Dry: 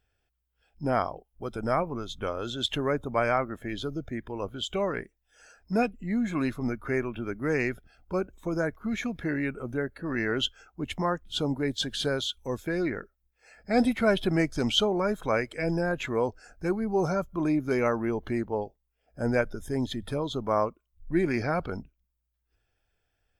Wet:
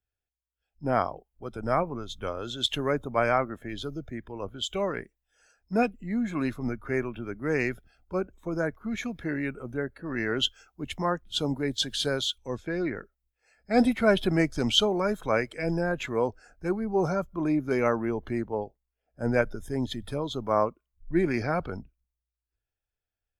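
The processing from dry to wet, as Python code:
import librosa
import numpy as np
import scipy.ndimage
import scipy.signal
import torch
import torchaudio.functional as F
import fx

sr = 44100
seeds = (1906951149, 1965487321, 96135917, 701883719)

y = fx.lowpass(x, sr, hz=5600.0, slope=12, at=(12.38, 12.96))
y = fx.band_widen(y, sr, depth_pct=40)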